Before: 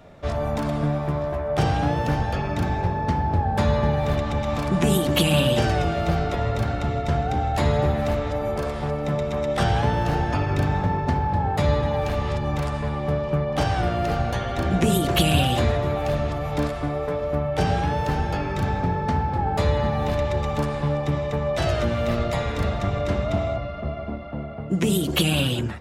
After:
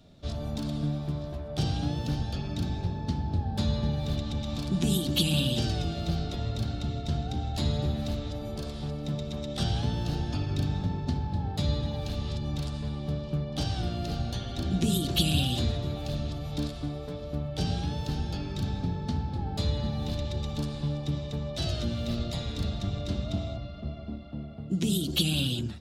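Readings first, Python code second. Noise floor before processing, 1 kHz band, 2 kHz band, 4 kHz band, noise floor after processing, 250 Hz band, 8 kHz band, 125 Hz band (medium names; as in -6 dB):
-30 dBFS, -16.0 dB, -13.0 dB, -2.5 dB, -38 dBFS, -5.5 dB, -4.5 dB, -6.0 dB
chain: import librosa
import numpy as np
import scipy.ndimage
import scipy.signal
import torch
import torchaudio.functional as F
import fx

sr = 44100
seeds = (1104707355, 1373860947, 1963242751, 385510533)

y = fx.graphic_eq(x, sr, hz=(250, 500, 1000, 2000, 4000), db=(3, -7, -9, -11, 10))
y = y * 10.0 ** (-6.0 / 20.0)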